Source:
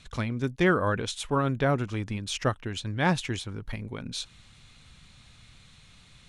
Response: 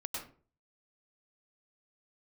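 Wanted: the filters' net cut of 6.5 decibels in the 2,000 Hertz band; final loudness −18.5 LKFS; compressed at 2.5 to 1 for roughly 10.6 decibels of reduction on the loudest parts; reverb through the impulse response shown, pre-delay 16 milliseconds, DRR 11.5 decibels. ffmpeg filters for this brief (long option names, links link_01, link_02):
-filter_complex "[0:a]equalizer=frequency=2000:width_type=o:gain=-9,acompressor=threshold=-36dB:ratio=2.5,asplit=2[link_01][link_02];[1:a]atrim=start_sample=2205,adelay=16[link_03];[link_02][link_03]afir=irnorm=-1:irlink=0,volume=-12.5dB[link_04];[link_01][link_04]amix=inputs=2:normalize=0,volume=19dB"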